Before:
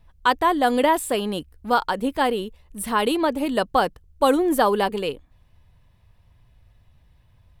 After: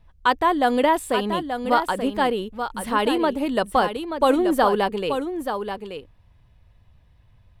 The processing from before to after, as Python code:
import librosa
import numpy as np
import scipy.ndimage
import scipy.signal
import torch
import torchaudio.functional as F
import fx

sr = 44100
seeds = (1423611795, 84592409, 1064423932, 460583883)

p1 = fx.high_shelf(x, sr, hz=7200.0, db=-8.0)
y = p1 + fx.echo_single(p1, sr, ms=881, db=-8.0, dry=0)